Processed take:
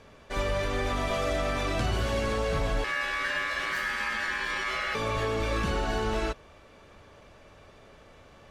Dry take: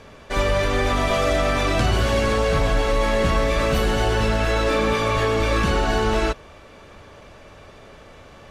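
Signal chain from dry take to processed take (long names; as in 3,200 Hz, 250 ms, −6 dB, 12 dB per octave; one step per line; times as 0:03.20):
0:02.84–0:04.95: ring modulation 1,700 Hz
level −8.5 dB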